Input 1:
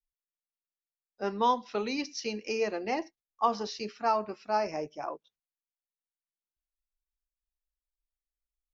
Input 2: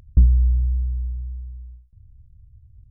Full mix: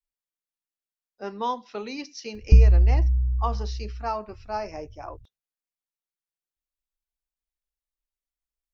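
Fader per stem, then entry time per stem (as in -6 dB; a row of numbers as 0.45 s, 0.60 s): -2.0 dB, +0.5 dB; 0.00 s, 2.35 s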